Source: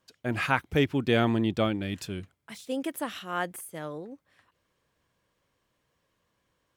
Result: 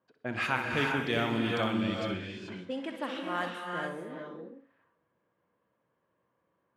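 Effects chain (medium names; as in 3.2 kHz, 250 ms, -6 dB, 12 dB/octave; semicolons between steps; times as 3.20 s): Bessel high-pass 180 Hz, order 2; on a send: flutter echo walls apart 10.6 m, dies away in 0.36 s; on the sum: dynamic bell 380 Hz, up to -5 dB, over -36 dBFS, Q 0.9; level-controlled noise filter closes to 1.3 kHz, open at -24.5 dBFS; in parallel at -2 dB: peak limiter -20 dBFS, peak gain reduction 10.5 dB; on the sum: gated-style reverb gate 460 ms rising, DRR 1 dB; trim -6.5 dB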